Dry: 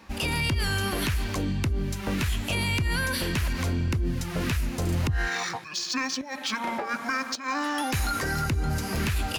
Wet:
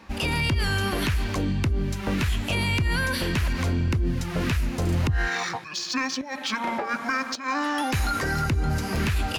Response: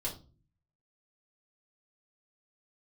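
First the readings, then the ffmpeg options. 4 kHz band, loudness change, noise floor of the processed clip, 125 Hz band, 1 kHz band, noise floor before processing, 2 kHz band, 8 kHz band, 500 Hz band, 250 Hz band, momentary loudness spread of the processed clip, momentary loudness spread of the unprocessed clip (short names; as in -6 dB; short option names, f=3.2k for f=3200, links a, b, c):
+0.5 dB, +2.0 dB, -36 dBFS, +2.5 dB, +2.5 dB, -38 dBFS, +2.0 dB, -1.5 dB, +2.5 dB, +2.5 dB, 4 LU, 4 LU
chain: -af "highshelf=f=6.4k:g=-7,volume=2.5dB"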